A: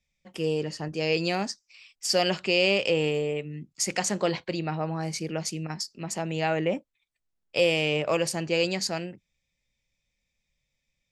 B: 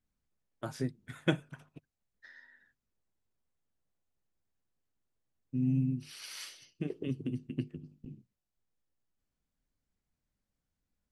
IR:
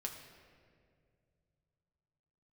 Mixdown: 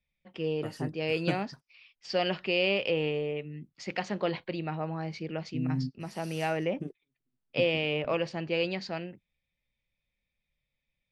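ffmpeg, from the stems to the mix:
-filter_complex "[0:a]lowpass=f=3.9k:w=0.5412,lowpass=f=3.9k:w=1.3066,volume=-4dB,asplit=2[a][b];[1:a]equalizer=f=2.6k:w=1.1:g=-13.5,volume=-1.5dB[c];[b]apad=whole_len=490145[d];[c][d]sidechaingate=range=-49dB:threshold=-48dB:ratio=16:detection=peak[e];[a][e]amix=inputs=2:normalize=0"

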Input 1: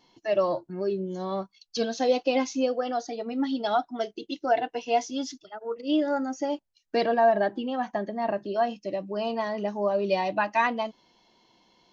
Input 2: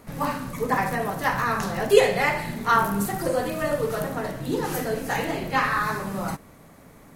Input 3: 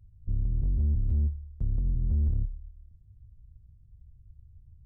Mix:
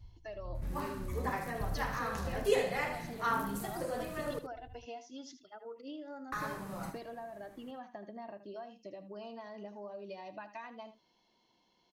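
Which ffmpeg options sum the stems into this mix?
-filter_complex "[0:a]acompressor=threshold=-32dB:ratio=10,volume=-10.5dB,asplit=3[a][b][c];[b]volume=-12.5dB[d];[1:a]adelay=550,volume=-13dB,asplit=3[e][f][g];[e]atrim=end=4.39,asetpts=PTS-STARTPTS,afade=t=out:st=4.386:d=0.004:c=hsin[h];[f]atrim=start=4.39:end=6.32,asetpts=PTS-STARTPTS,volume=0[i];[g]atrim=start=6.32,asetpts=PTS-STARTPTS,afade=t=in:d=0.004:c=hsin[j];[h][i][j]concat=n=3:v=0:a=1,asplit=2[k][l];[l]volume=-9.5dB[m];[2:a]acompressor=threshold=-34dB:ratio=6,tremolo=f=1.7:d=0.85,volume=2dB[n];[c]apad=whole_len=214216[o];[n][o]sidechaincompress=threshold=-47dB:ratio=8:attack=16:release=390[p];[d][m]amix=inputs=2:normalize=0,aecho=0:1:78:1[q];[a][k][p][q]amix=inputs=4:normalize=0"

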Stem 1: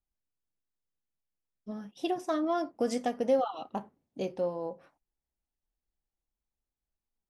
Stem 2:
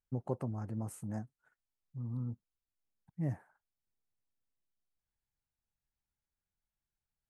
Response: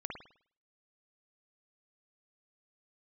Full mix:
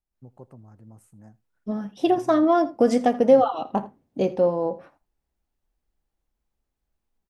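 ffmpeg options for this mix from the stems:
-filter_complex "[0:a]highshelf=f=2.3k:g=-9,dynaudnorm=f=110:g=3:m=11dB,volume=0.5dB,asplit=2[a][b];[b]volume=-19dB[c];[1:a]adelay=100,volume=-9.5dB,asplit=2[d][e];[e]volume=-23.5dB[f];[c][f]amix=inputs=2:normalize=0,aecho=0:1:81:1[g];[a][d][g]amix=inputs=3:normalize=0"

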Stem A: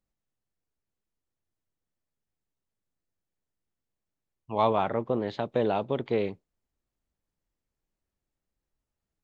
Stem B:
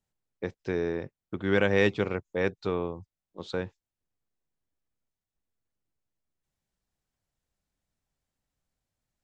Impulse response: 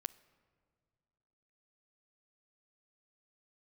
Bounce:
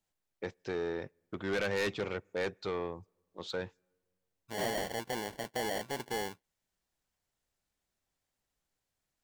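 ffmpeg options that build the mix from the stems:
-filter_complex "[0:a]acrusher=samples=35:mix=1:aa=0.000001,volume=-2.5dB[a];[1:a]volume=1dB,asplit=2[b][c];[c]volume=-17dB[d];[2:a]atrim=start_sample=2205[e];[d][e]afir=irnorm=-1:irlink=0[f];[a][b][f]amix=inputs=3:normalize=0,lowshelf=f=480:g=-8.5,asoftclip=type=tanh:threshold=-27.5dB"

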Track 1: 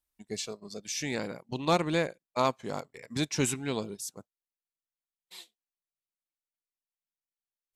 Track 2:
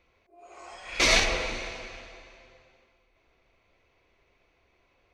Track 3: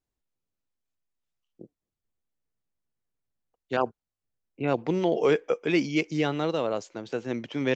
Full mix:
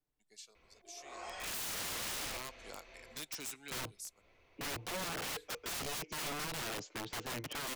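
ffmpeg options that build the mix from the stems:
-filter_complex "[0:a]acompressor=threshold=-29dB:ratio=2.5,highpass=f=1.1k:p=1,highshelf=f=2.6k:g=7,volume=-8.5dB,afade=t=in:st=2.24:d=0.21:silence=0.237137,afade=t=out:st=3.59:d=0.66:silence=0.316228,asplit=2[a][b];[1:a]adelay=550,volume=0dB[c];[2:a]highshelf=f=5.5k:g=-8.5,aecho=1:1:6.7:0.93,volume=-3.5dB[d];[b]apad=whole_len=250726[e];[c][e]sidechaincompress=threshold=-50dB:ratio=10:attack=9.7:release=291[f];[a][f][d]amix=inputs=3:normalize=0,acrossover=split=150|460|1900[g][h][i][j];[g]acompressor=threshold=-37dB:ratio=4[k];[h]acompressor=threshold=-40dB:ratio=4[l];[i]acompressor=threshold=-41dB:ratio=4[m];[j]acompressor=threshold=-38dB:ratio=4[n];[k][l][m][n]amix=inputs=4:normalize=0,aeval=exprs='(mod(56.2*val(0)+1,2)-1)/56.2':c=same"

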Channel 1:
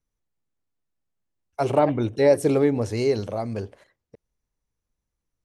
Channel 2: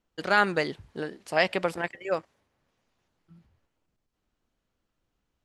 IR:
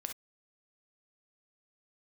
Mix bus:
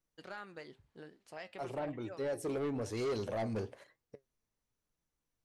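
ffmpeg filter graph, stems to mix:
-filter_complex "[0:a]lowshelf=f=130:g=-8,volume=2dB[a];[1:a]acompressor=threshold=-28dB:ratio=2.5,volume=-12.5dB,asplit=2[b][c];[c]apad=whole_len=240305[d];[a][d]sidechaincompress=threshold=-51dB:ratio=5:attack=10:release=1200[e];[e][b]amix=inputs=2:normalize=0,flanger=delay=5.9:depth=3.6:regen=73:speed=1:shape=triangular,asoftclip=type=tanh:threshold=-31dB"

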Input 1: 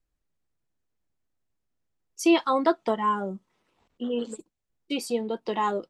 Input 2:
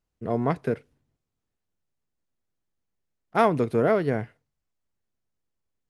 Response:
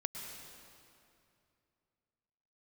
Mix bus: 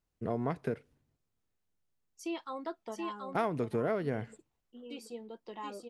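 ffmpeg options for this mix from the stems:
-filter_complex "[0:a]volume=-16.5dB,asplit=2[a][b];[b]volume=-3.5dB[c];[1:a]volume=-2dB[d];[c]aecho=0:1:728:1[e];[a][d][e]amix=inputs=3:normalize=0,acompressor=threshold=-32dB:ratio=2.5"

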